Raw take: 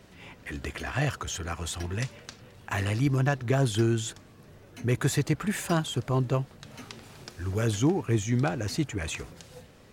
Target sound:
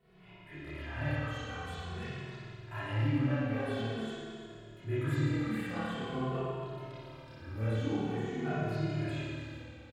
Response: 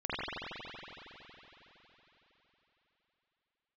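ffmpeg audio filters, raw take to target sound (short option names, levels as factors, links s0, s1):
-filter_complex "[0:a]equalizer=f=6100:w=1.7:g=-15[s0];[1:a]atrim=start_sample=2205,asetrate=74970,aresample=44100[s1];[s0][s1]afir=irnorm=-1:irlink=0,asplit=2[s2][s3];[s3]adelay=2.3,afreqshift=-0.47[s4];[s2][s4]amix=inputs=2:normalize=1,volume=0.447"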